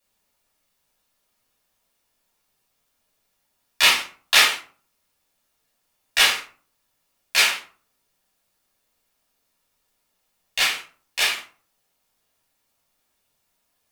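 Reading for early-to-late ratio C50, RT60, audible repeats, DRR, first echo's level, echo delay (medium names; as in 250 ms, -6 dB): 7.5 dB, 0.45 s, no echo, -7.0 dB, no echo, no echo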